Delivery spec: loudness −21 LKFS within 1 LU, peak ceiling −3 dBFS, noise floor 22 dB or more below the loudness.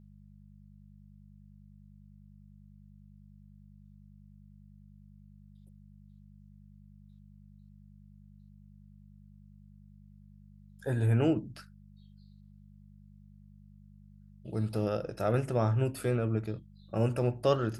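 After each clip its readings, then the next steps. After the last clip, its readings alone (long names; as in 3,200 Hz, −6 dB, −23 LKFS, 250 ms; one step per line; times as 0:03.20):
mains hum 50 Hz; hum harmonics up to 200 Hz; level of the hum −52 dBFS; integrated loudness −31.0 LKFS; sample peak −15.0 dBFS; target loudness −21.0 LKFS
→ hum removal 50 Hz, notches 4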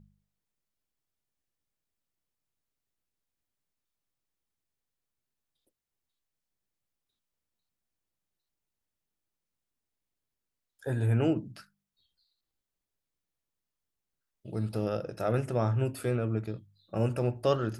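mains hum none found; integrated loudness −31.0 LKFS; sample peak −15.0 dBFS; target loudness −21.0 LKFS
→ level +10 dB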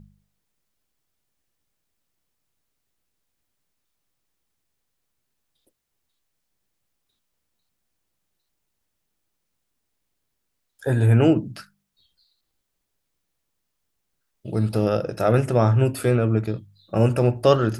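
integrated loudness −21.0 LKFS; sample peak −5.0 dBFS; background noise floor −77 dBFS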